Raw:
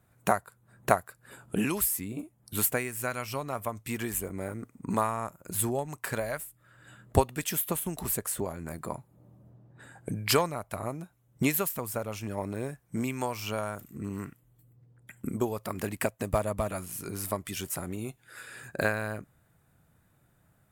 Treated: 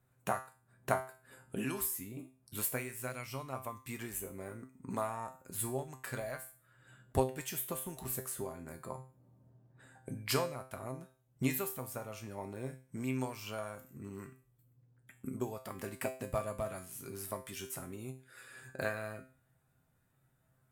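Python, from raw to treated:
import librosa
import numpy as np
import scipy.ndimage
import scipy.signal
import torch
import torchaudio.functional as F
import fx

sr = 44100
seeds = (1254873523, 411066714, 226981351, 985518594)

y = fx.comb_fb(x, sr, f0_hz=130.0, decay_s=0.39, harmonics='all', damping=0.0, mix_pct=80)
y = F.gain(torch.from_numpy(y), 1.0).numpy()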